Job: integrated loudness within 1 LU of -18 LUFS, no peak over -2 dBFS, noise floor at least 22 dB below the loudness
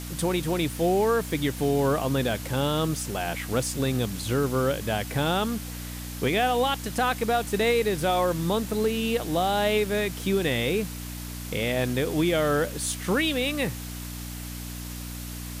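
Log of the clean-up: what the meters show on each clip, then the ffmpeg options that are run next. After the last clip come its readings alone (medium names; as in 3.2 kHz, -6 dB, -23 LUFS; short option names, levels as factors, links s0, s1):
hum 60 Hz; highest harmonic 300 Hz; hum level -35 dBFS; noise floor -36 dBFS; noise floor target -49 dBFS; loudness -26.5 LUFS; peak level -13.5 dBFS; loudness target -18.0 LUFS
-> -af "bandreject=f=60:t=h:w=4,bandreject=f=120:t=h:w=4,bandreject=f=180:t=h:w=4,bandreject=f=240:t=h:w=4,bandreject=f=300:t=h:w=4"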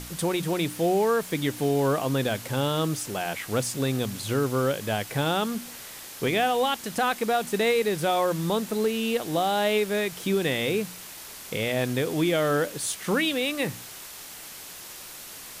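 hum not found; noise floor -42 dBFS; noise floor target -48 dBFS
-> -af "afftdn=nr=6:nf=-42"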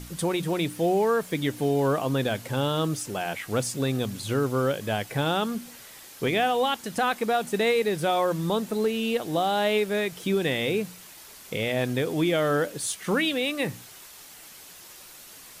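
noise floor -47 dBFS; noise floor target -48 dBFS
-> -af "afftdn=nr=6:nf=-47"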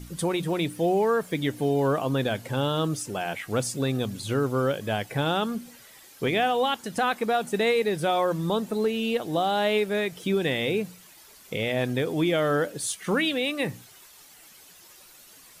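noise floor -52 dBFS; loudness -26.0 LUFS; peak level -14.0 dBFS; loudness target -18.0 LUFS
-> -af "volume=2.51"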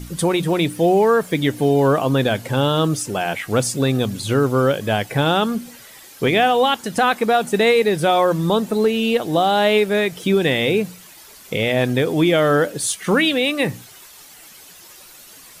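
loudness -18.0 LUFS; peak level -6.0 dBFS; noise floor -44 dBFS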